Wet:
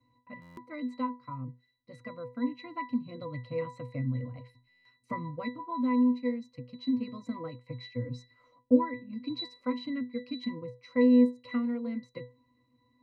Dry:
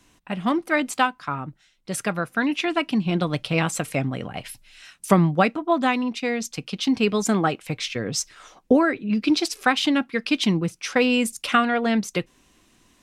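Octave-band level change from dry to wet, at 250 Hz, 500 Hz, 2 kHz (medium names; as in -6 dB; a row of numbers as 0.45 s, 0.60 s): -6.5 dB, -10.0 dB, -20.0 dB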